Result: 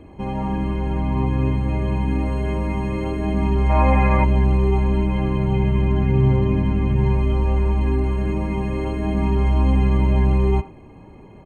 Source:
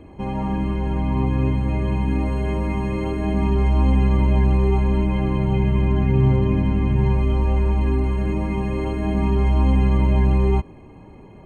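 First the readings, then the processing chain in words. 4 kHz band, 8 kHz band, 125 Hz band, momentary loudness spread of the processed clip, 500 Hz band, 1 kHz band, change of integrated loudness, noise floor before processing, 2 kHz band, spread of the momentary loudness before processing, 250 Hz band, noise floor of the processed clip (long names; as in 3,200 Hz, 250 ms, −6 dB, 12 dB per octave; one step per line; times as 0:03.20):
0.0 dB, can't be measured, 0.0 dB, 7 LU, +1.0 dB, +3.0 dB, 0.0 dB, −43 dBFS, +2.5 dB, 6 LU, 0.0 dB, −43 dBFS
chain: far-end echo of a speakerphone 80 ms, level −14 dB
gain on a spectral selection 0:03.70–0:04.24, 480–2,700 Hz +11 dB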